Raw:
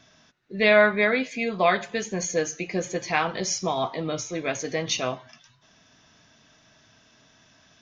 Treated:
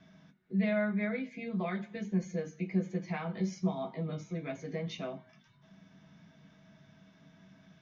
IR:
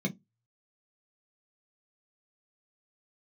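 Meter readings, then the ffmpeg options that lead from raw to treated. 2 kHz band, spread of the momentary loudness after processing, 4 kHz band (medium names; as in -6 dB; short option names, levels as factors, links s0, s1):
-17.0 dB, 8 LU, -19.5 dB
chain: -filter_complex "[0:a]bass=f=250:g=-1,treble=f=4000:g=-11,acompressor=threshold=0.00355:ratio=1.5,asplit=2[s0][s1];[1:a]atrim=start_sample=2205,highshelf=f=4800:g=9.5[s2];[s1][s2]afir=irnorm=-1:irlink=0,volume=0.376[s3];[s0][s3]amix=inputs=2:normalize=0,volume=0.631"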